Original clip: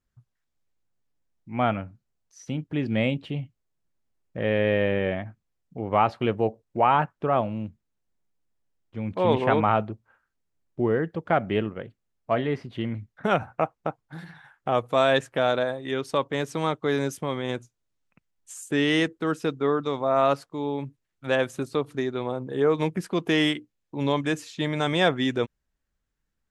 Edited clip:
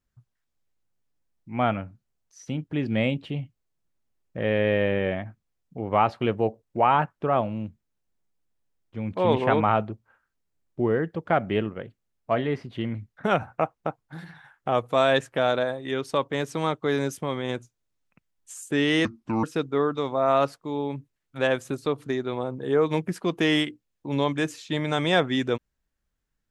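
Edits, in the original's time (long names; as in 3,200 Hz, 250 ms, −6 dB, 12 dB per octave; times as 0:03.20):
0:19.05–0:19.32: play speed 70%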